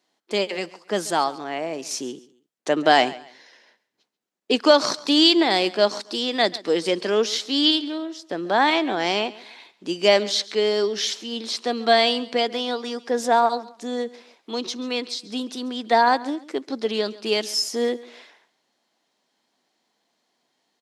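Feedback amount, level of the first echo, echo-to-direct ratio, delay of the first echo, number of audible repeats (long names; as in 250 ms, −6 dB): 29%, −19.5 dB, −19.0 dB, 137 ms, 2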